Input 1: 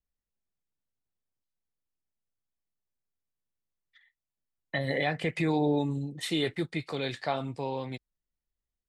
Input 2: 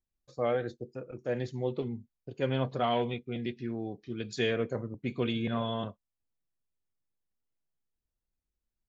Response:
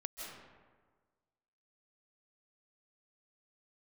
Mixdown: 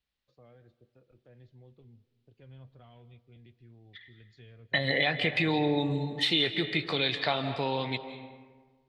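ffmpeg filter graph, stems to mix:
-filter_complex "[0:a]highpass=49,equalizer=f=3.9k:w=0.5:g=8.5,volume=1dB,asplit=2[a][b];[b]volume=-5.5dB[c];[1:a]asubboost=boost=7:cutoff=79,acrossover=split=180[d][e];[e]acompressor=threshold=-48dB:ratio=2.5[f];[d][f]amix=inputs=2:normalize=0,volume=-16.5dB,asplit=2[g][h];[h]volume=-15dB[i];[2:a]atrim=start_sample=2205[j];[c][i]amix=inputs=2:normalize=0[k];[k][j]afir=irnorm=-1:irlink=0[l];[a][g][l]amix=inputs=3:normalize=0,highshelf=f=5.2k:t=q:w=1.5:g=-10.5,acompressor=threshold=-27dB:ratio=2"

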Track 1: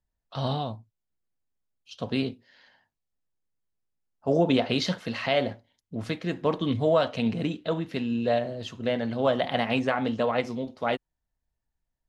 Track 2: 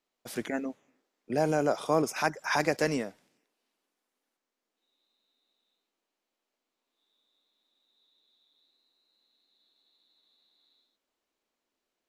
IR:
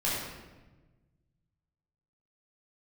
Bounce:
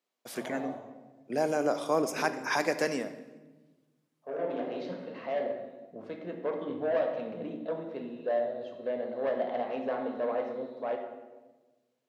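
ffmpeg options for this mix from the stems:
-filter_complex "[0:a]bandpass=f=560:t=q:w=1.1:csg=0,asoftclip=type=tanh:threshold=-21.5dB,volume=-6dB,asplit=2[a][b];[b]volume=-9.5dB[c];[1:a]volume=-2.5dB,asplit=3[d][e][f];[e]volume=-17.5dB[g];[f]apad=whole_len=532753[h];[a][h]sidechaincompress=threshold=-50dB:ratio=8:attack=16:release=1380[i];[2:a]atrim=start_sample=2205[j];[c][g]amix=inputs=2:normalize=0[k];[k][j]afir=irnorm=-1:irlink=0[l];[i][d][l]amix=inputs=3:normalize=0,highpass=190"

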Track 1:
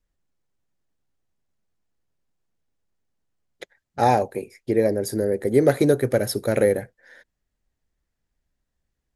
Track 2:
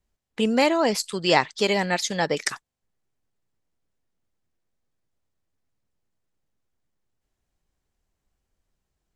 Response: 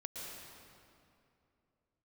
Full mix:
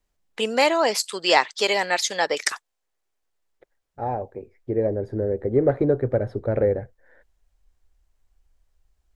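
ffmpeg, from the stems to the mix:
-filter_complex "[0:a]lowpass=1.1k,volume=-5.5dB[a];[1:a]highpass=420,volume=-2dB,asplit=2[b][c];[c]apad=whole_len=403884[d];[a][d]sidechaincompress=threshold=-45dB:ratio=6:attack=16:release=1480[e];[e][b]amix=inputs=2:normalize=0,asubboost=boost=7:cutoff=67,acontrast=25"

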